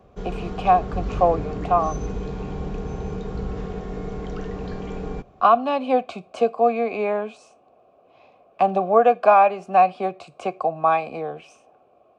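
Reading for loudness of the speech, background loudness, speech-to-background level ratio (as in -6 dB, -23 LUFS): -20.5 LUFS, -31.5 LUFS, 11.0 dB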